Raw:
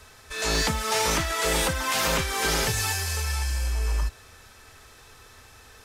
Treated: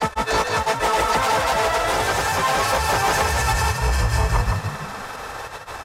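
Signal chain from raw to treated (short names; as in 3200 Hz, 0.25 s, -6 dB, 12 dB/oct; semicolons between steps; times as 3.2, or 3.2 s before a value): bell 820 Hz +14 dB 2.2 oct; in parallel at -1 dB: compressor, threshold -28 dBFS, peak gain reduction 15.5 dB; on the sum: grains 0.1 s, grains 20/s, spray 0.697 s, pitch spread up and down by 0 st; soft clip -14.5 dBFS, distortion -12 dB; vocal rider 2 s; on a send: frequency-shifting echo 0.164 s, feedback 35%, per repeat +49 Hz, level -5 dB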